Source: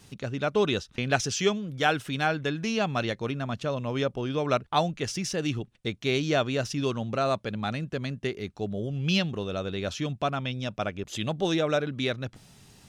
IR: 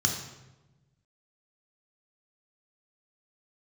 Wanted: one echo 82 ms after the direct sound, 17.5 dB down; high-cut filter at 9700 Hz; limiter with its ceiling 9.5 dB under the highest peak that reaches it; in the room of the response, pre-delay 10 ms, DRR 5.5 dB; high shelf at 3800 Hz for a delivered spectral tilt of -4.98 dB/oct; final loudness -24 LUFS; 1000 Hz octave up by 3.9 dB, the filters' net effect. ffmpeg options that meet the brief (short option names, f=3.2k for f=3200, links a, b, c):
-filter_complex "[0:a]lowpass=9.7k,equalizer=f=1k:t=o:g=5.5,highshelf=f=3.8k:g=4,alimiter=limit=-15dB:level=0:latency=1,aecho=1:1:82:0.133,asplit=2[a][b];[1:a]atrim=start_sample=2205,adelay=10[c];[b][c]afir=irnorm=-1:irlink=0,volume=-14dB[d];[a][d]amix=inputs=2:normalize=0,volume=2dB"